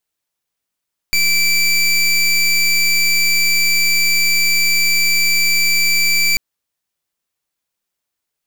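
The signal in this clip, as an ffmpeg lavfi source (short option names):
-f lavfi -i "aevalsrc='0.2*(2*lt(mod(2330*t,1),0.23)-1)':d=5.24:s=44100"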